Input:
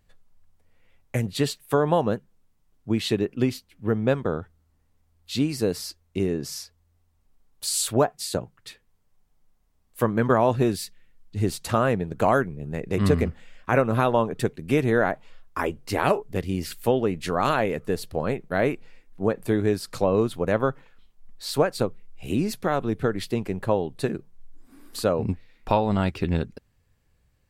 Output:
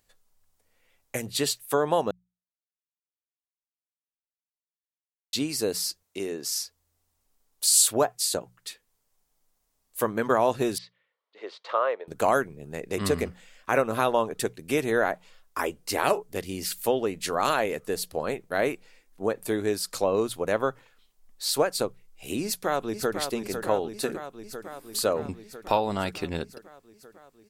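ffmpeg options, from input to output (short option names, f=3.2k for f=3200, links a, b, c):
-filter_complex "[0:a]asettb=1/sr,asplit=3[a][b][c];[a]atrim=end=6.034[d];[b]atrim=start=6.03:end=6.55,asetpts=PTS-STARTPTS,afade=t=in:d=0.004:c=qsin,afade=t=out:st=0.516:d=0.004:c=qsin,highpass=f=320:p=1[e];[c]atrim=start=6.546[f];[d][e]acrossfade=d=0.004:c1=hsin:c2=qsin[g];[g][f]acrossfade=d=0.004:c1=qsin:c2=hsin,asettb=1/sr,asplit=3[h][i][j];[h]atrim=end=10.784[k];[i]atrim=start=10.78:end=12.08,asetpts=PTS-STARTPTS,afade=t=in:d=0.004:c=qsin,afade=t=out:st=1.296:d=0.004:c=qsin,highpass=f=490:w=0.5412,highpass=f=490:w=1.3066,equalizer=f=530:t=q:w=4:g=4,equalizer=f=750:t=q:w=4:g=-6,equalizer=f=1.1k:t=q:w=4:g=4,equalizer=f=1.6k:t=q:w=4:g=-5,equalizer=f=2.6k:t=q:w=4:g=-7,lowpass=f=3.1k:w=0.5412,lowpass=f=3.1k:w=1.3066[l];[j]atrim=start=12.076[m];[k][l]acrossfade=d=0.004:c1=hsin:c2=qsin[n];[n][m]acrossfade=d=0.004:c1=qsin:c2=hsin,asplit=2[o][p];[p]afade=t=in:st=22.43:d=0.01,afade=t=out:st=23.18:d=0.01,aecho=0:1:500|1000|1500|2000|2500|3000|3500|4000|4500|5000|5500|6000:0.446684|0.335013|0.25126|0.188445|0.141333|0.106|0.0795001|0.0596251|0.0447188|0.0335391|0.0251543|0.0188657[q];[o][q]amix=inputs=2:normalize=0,asplit=3[r][s][t];[r]atrim=end=2.11,asetpts=PTS-STARTPTS,afade=t=out:st=2.106:d=0.004:c=hsin[u];[s]atrim=start=2.11:end=5.33,asetpts=PTS-STARTPTS,volume=0[v];[t]atrim=start=5.33,asetpts=PTS-STARTPTS,afade=t=in:d=0.004:c=hsin[w];[u][v][w]concat=n=3:v=0:a=1,bass=f=250:g=-10,treble=f=4k:g=9,bandreject=f=60:t=h:w=6,bandreject=f=120:t=h:w=6,bandreject=f=180:t=h:w=6,volume=-1.5dB"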